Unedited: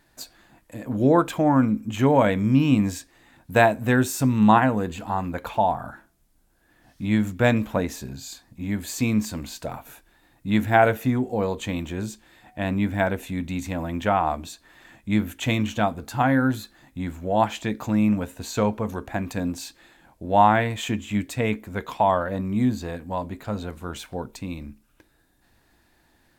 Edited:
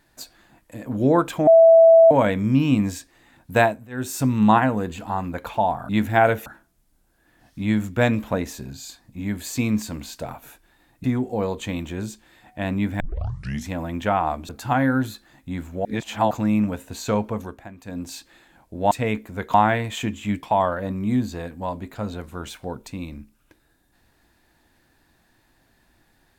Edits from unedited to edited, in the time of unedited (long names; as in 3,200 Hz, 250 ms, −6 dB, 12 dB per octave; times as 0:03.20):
0:01.47–0:02.11: beep over 658 Hz −7.5 dBFS
0:03.61–0:04.17: duck −22.5 dB, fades 0.27 s
0:10.47–0:11.04: move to 0:05.89
0:13.00: tape start 0.69 s
0:14.49–0:15.98: remove
0:17.34–0:17.80: reverse
0:18.82–0:19.65: duck −14 dB, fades 0.36 s
0:21.29–0:21.92: move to 0:20.40